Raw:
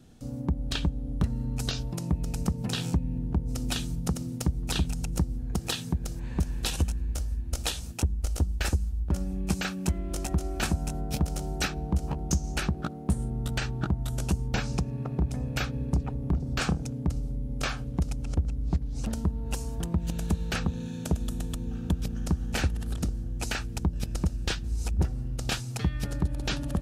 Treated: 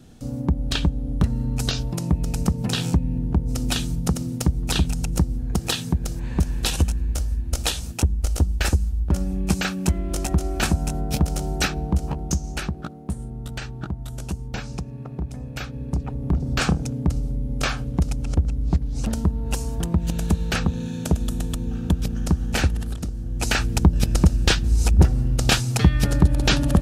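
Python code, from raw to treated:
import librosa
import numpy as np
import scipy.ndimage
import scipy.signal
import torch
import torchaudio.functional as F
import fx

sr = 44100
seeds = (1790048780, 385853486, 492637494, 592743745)

y = fx.gain(x, sr, db=fx.line((11.77, 6.5), (13.09, -2.0), (15.61, -2.0), (16.45, 6.5), (22.79, 6.5), (23.03, 0.0), (23.62, 11.5)))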